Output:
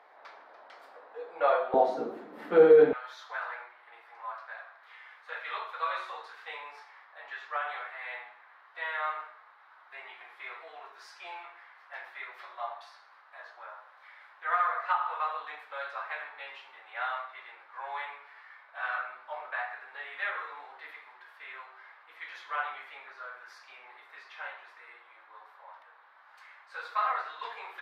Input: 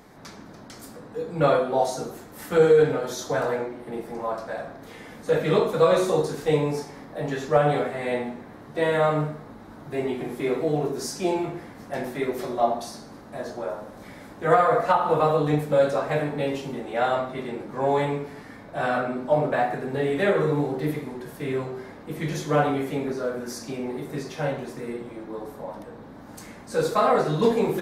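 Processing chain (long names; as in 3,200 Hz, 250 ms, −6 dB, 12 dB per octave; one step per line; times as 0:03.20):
high-pass filter 620 Hz 24 dB per octave, from 0:01.74 240 Hz, from 0:02.93 1,100 Hz
high-frequency loss of the air 400 metres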